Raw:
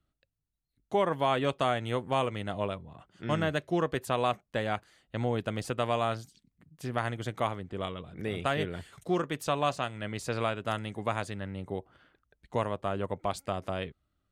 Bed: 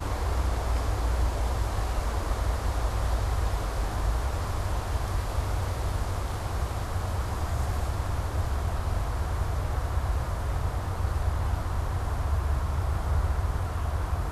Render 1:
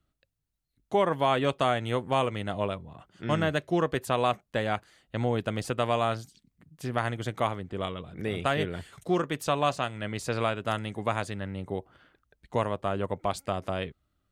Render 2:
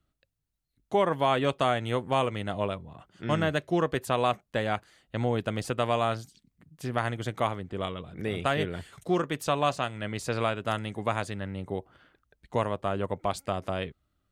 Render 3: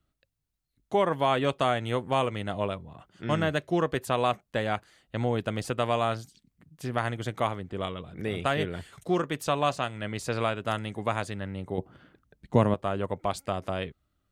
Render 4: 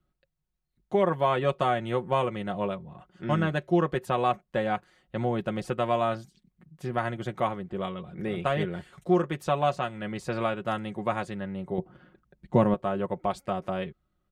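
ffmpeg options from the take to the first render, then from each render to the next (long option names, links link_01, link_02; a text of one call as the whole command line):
ffmpeg -i in.wav -af "volume=2.5dB" out.wav
ffmpeg -i in.wav -af anull out.wav
ffmpeg -i in.wav -filter_complex "[0:a]asettb=1/sr,asplit=3[link_01][link_02][link_03];[link_01]atrim=end=11.784[link_04];[link_02]atrim=start=11.78:end=12.74,asetpts=PTS-STARTPTS,afade=type=in:duration=0.004:curve=qsin,afade=type=out:start_time=0.956:duration=0.004:curve=qsin,equalizer=frequency=180:width_type=o:width=2.4:gain=12[link_05];[link_03]atrim=start=12.736[link_06];[link_04][link_05]acrossfade=duration=0.004:curve1=hsin:curve2=qsin[link_07];[link_07][link_06]acrossfade=duration=0.004:curve1=qsin:curve2=hsin" out.wav
ffmpeg -i in.wav -af "highshelf=frequency=2800:gain=-10.5,aecho=1:1:5.5:0.61" out.wav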